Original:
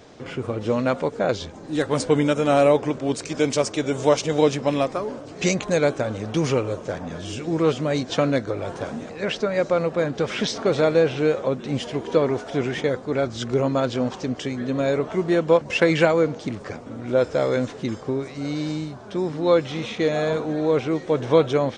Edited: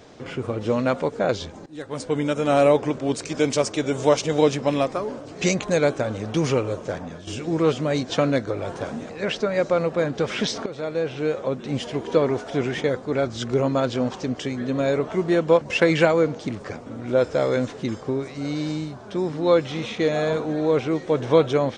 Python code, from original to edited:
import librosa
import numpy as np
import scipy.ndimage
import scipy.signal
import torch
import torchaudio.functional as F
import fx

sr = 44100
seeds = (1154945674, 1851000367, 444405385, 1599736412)

y = fx.edit(x, sr, fx.fade_in_from(start_s=1.66, length_s=0.98, floor_db=-18.0),
    fx.fade_out_to(start_s=6.96, length_s=0.31, floor_db=-10.5),
    fx.fade_in_from(start_s=10.66, length_s=1.55, curve='qsin', floor_db=-16.0), tone=tone)